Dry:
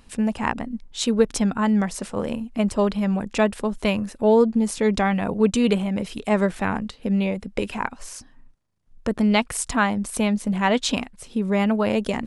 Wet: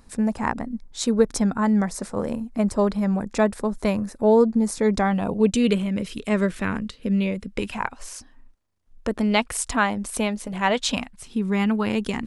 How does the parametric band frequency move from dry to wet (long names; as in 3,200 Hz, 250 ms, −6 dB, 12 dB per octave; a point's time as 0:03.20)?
parametric band −12 dB 0.53 octaves
0:05.02 2,900 Hz
0:05.74 790 Hz
0:07.53 790 Hz
0:08.02 150 Hz
0:10.20 150 Hz
0:11.38 600 Hz